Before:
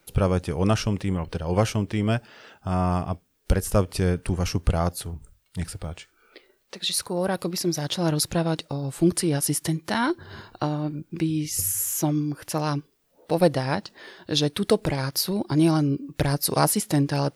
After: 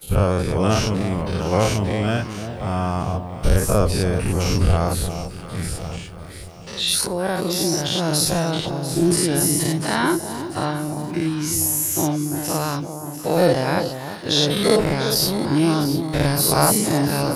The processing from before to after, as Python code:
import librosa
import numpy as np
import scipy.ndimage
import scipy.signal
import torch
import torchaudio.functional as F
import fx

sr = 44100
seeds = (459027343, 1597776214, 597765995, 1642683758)

y = fx.spec_dilate(x, sr, span_ms=120)
y = fx.echo_alternate(y, sr, ms=347, hz=990.0, feedback_pct=67, wet_db=-8.5)
y = F.gain(torch.from_numpy(y), -1.0).numpy()